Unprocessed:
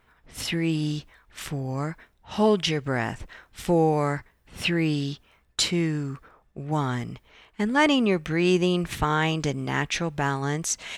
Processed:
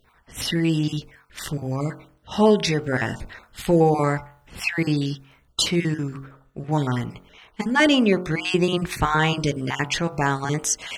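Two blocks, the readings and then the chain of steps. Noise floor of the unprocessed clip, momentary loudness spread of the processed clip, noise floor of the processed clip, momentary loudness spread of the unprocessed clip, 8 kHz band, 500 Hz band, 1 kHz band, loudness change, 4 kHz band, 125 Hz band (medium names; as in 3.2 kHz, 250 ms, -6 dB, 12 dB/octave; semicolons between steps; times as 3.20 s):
-64 dBFS, 17 LU, -59 dBFS, 14 LU, +3.5 dB, +3.0 dB, +2.5 dB, +3.0 dB, +3.0 dB, +3.0 dB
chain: random holes in the spectrogram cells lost 22%; de-hum 45.21 Hz, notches 33; trim +4.5 dB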